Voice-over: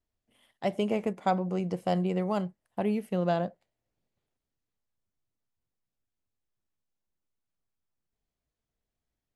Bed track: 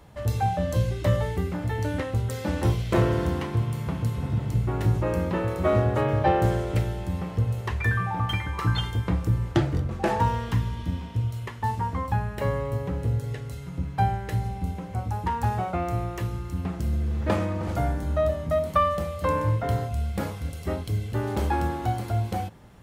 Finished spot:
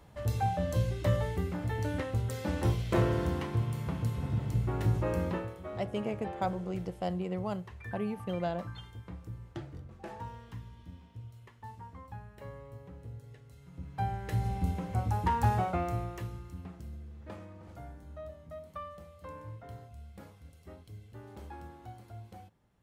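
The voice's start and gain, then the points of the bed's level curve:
5.15 s, -6.0 dB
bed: 5.31 s -5.5 dB
5.61 s -19.5 dB
13.47 s -19.5 dB
14.53 s -1.5 dB
15.57 s -1.5 dB
17.15 s -21 dB

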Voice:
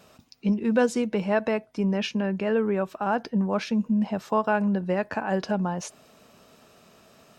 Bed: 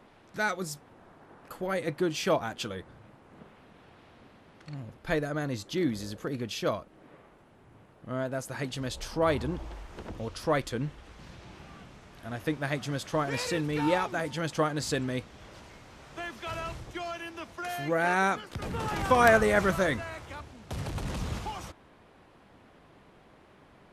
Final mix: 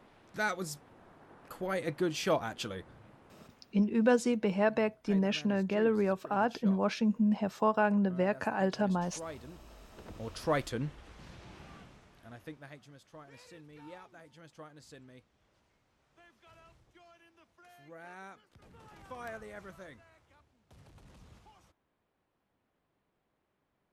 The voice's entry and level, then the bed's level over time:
3.30 s, -4.0 dB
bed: 3.25 s -3 dB
4.05 s -17 dB
9.52 s -17 dB
10.38 s -3 dB
11.75 s -3 dB
12.94 s -23 dB

